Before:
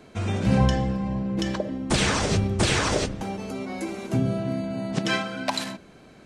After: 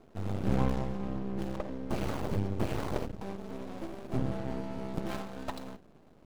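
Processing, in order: median filter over 25 samples; half-wave rectifier; gain -4 dB

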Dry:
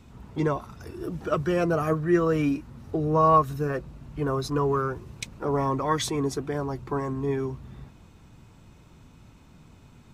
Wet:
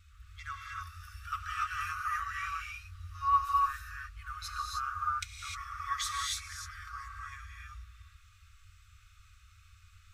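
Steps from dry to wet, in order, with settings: wow and flutter 22 cents; non-linear reverb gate 0.33 s rising, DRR -2.5 dB; FFT band-reject 100–1100 Hz; gain -5.5 dB

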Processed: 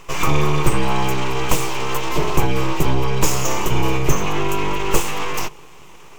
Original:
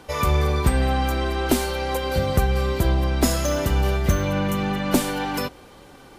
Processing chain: full-wave rectifier; ripple EQ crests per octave 0.73, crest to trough 9 dB; gain +4 dB

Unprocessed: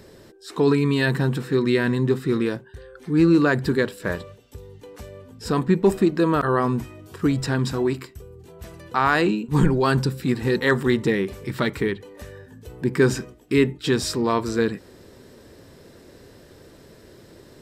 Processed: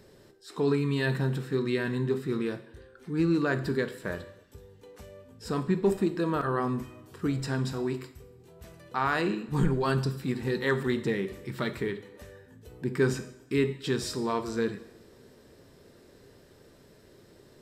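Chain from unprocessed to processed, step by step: two-slope reverb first 0.65 s, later 1.9 s, DRR 8.5 dB; gain -8.5 dB

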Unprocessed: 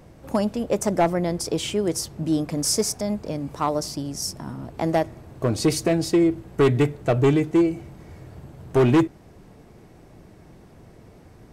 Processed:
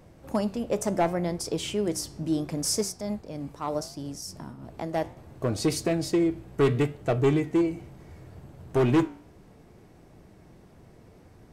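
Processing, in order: 2.79–5.17 tremolo 3.1 Hz, depth 51%; flange 0.71 Hz, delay 9.7 ms, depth 8 ms, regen +82%

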